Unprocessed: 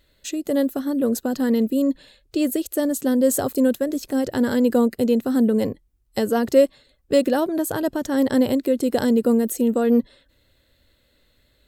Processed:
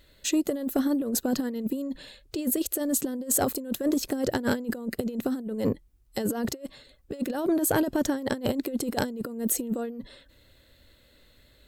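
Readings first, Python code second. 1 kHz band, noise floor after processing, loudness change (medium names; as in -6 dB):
-5.0 dB, -60 dBFS, -7.5 dB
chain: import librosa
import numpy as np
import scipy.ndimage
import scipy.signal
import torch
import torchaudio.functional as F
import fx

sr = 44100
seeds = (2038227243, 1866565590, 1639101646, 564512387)

y = fx.over_compress(x, sr, threshold_db=-24.0, ratio=-0.5)
y = 10.0 ** (-10.5 / 20.0) * np.tanh(y / 10.0 ** (-10.5 / 20.0))
y = F.gain(torch.from_numpy(y), -2.0).numpy()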